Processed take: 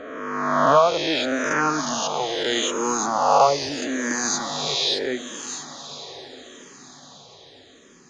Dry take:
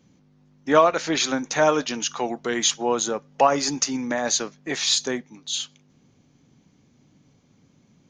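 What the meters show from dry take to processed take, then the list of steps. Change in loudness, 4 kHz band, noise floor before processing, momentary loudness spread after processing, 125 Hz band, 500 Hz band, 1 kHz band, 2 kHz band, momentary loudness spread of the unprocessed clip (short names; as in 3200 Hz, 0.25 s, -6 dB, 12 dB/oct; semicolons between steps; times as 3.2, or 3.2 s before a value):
+1.0 dB, +1.0 dB, -61 dBFS, 18 LU, +1.5 dB, +0.5 dB, +4.0 dB, +2.5 dB, 10 LU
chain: spectral swells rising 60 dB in 1.88 s; high shelf 3800 Hz -7 dB; on a send: diffused feedback echo 1.148 s, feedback 40%, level -14 dB; on the sum: endless phaser -0.78 Hz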